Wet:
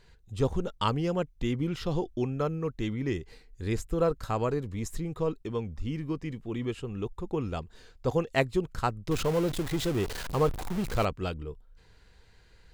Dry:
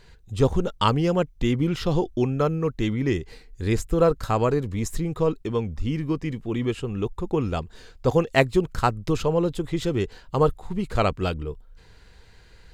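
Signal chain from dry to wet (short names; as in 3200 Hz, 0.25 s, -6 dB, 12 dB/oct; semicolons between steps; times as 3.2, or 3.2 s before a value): 9.11–11.05 zero-crossing step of -24 dBFS; gain -7 dB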